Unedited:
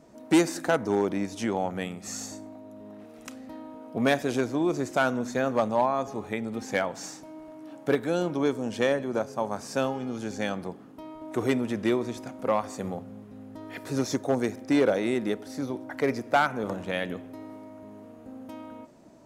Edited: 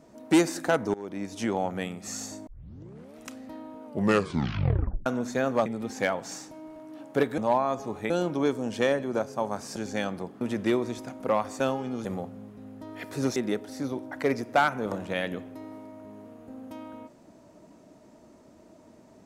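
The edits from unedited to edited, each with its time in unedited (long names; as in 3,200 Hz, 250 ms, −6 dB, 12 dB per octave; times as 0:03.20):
0:00.94–0:01.43: fade in, from −23 dB
0:02.47: tape start 0.70 s
0:03.85: tape stop 1.21 s
0:05.66–0:06.38: move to 0:08.10
0:09.76–0:10.21: move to 0:12.79
0:10.86–0:11.60: remove
0:14.10–0:15.14: remove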